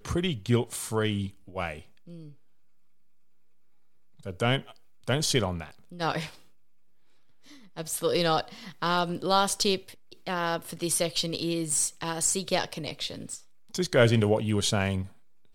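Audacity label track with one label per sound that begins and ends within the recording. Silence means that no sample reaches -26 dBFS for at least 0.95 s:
4.280000	6.240000	sound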